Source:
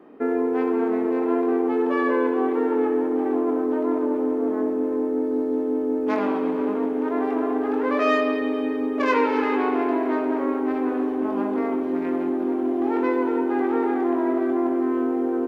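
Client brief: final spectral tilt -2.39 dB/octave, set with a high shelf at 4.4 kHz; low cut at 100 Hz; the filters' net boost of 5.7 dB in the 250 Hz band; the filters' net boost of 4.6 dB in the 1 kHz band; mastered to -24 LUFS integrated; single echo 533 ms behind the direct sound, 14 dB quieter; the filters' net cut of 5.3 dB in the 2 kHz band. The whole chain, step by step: high-pass 100 Hz; peaking EQ 250 Hz +6.5 dB; peaking EQ 1 kHz +7.5 dB; peaking EQ 2 kHz -8.5 dB; treble shelf 4.4 kHz -7.5 dB; delay 533 ms -14 dB; trim -6.5 dB

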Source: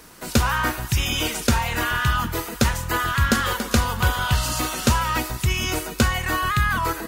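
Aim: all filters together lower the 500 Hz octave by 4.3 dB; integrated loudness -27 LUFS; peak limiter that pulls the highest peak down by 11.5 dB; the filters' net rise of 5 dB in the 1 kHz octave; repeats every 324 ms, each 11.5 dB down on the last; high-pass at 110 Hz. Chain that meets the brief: high-pass 110 Hz; peaking EQ 500 Hz -7.5 dB; peaking EQ 1 kHz +7.5 dB; peak limiter -17 dBFS; feedback delay 324 ms, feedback 27%, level -11.5 dB; trim -1.5 dB

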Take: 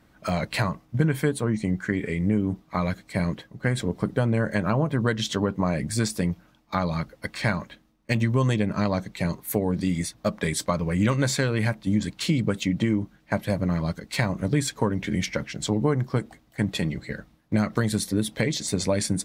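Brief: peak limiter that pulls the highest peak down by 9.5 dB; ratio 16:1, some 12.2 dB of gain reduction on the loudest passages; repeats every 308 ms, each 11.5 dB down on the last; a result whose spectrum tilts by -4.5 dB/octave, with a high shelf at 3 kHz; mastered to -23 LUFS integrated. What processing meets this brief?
treble shelf 3 kHz +6 dB; compression 16:1, threshold -30 dBFS; peak limiter -25.5 dBFS; feedback delay 308 ms, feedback 27%, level -11.5 dB; trim +14 dB

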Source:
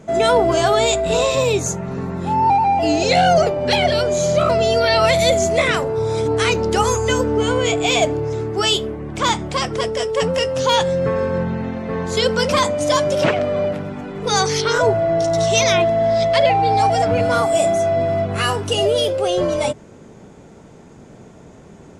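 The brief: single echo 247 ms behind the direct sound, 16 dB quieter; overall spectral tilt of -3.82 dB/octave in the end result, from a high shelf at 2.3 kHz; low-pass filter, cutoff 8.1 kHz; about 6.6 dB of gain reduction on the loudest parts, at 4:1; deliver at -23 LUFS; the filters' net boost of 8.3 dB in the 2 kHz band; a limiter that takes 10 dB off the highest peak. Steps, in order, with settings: low-pass 8.1 kHz; peaking EQ 2 kHz +7.5 dB; treble shelf 2.3 kHz +5.5 dB; compression 4:1, threshold -15 dBFS; peak limiter -14.5 dBFS; delay 247 ms -16 dB; trim -0.5 dB

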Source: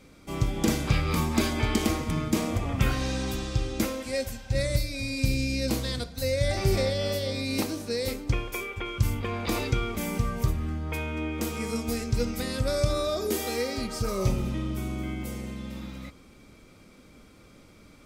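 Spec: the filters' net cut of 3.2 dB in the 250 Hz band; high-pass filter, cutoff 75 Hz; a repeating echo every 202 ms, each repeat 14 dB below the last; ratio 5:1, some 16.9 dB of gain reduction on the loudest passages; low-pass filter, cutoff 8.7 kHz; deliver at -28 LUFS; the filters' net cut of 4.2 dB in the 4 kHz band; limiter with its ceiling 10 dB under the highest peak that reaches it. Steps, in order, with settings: high-pass 75 Hz; low-pass 8.7 kHz; peaking EQ 250 Hz -4 dB; peaking EQ 4 kHz -5 dB; compression 5:1, threshold -41 dBFS; peak limiter -36.5 dBFS; feedback delay 202 ms, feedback 20%, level -14 dB; trim +18 dB

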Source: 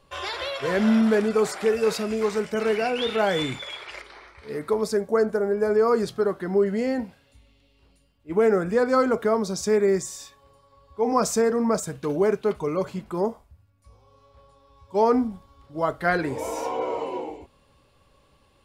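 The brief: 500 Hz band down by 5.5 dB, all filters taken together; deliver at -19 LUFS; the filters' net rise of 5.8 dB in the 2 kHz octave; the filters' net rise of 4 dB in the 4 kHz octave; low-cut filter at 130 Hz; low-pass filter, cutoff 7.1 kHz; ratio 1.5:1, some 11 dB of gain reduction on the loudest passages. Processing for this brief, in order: high-pass 130 Hz; low-pass 7.1 kHz; peaking EQ 500 Hz -7 dB; peaking EQ 2 kHz +7.5 dB; peaking EQ 4 kHz +3 dB; compression 1.5:1, threshold -48 dBFS; trim +16.5 dB

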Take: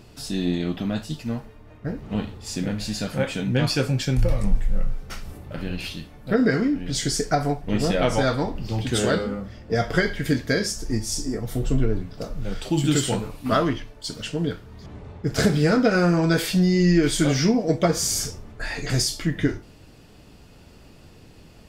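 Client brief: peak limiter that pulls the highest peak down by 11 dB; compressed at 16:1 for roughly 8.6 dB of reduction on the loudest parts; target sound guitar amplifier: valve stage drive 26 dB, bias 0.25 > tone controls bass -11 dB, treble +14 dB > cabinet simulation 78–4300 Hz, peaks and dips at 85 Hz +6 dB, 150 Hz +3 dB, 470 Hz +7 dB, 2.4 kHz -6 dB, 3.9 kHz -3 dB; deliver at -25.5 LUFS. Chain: compression 16:1, threshold -20 dBFS; peak limiter -20.5 dBFS; valve stage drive 26 dB, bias 0.25; tone controls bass -11 dB, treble +14 dB; cabinet simulation 78–4300 Hz, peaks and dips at 85 Hz +6 dB, 150 Hz +3 dB, 470 Hz +7 dB, 2.4 kHz -6 dB, 3.9 kHz -3 dB; trim +9 dB

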